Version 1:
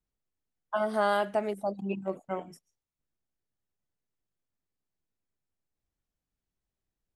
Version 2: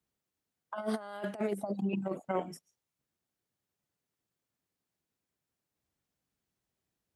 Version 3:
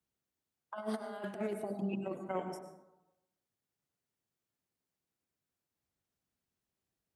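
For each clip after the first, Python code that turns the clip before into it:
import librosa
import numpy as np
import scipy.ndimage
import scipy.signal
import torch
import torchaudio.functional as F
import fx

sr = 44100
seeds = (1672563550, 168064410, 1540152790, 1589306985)

y1 = fx.over_compress(x, sr, threshold_db=-33.0, ratio=-0.5)
y1 = scipy.signal.sosfilt(scipy.signal.butter(2, 97.0, 'highpass', fs=sr, output='sos'), y1)
y2 = fx.rev_plate(y1, sr, seeds[0], rt60_s=0.94, hf_ratio=0.4, predelay_ms=85, drr_db=7.0)
y2 = y2 * librosa.db_to_amplitude(-4.0)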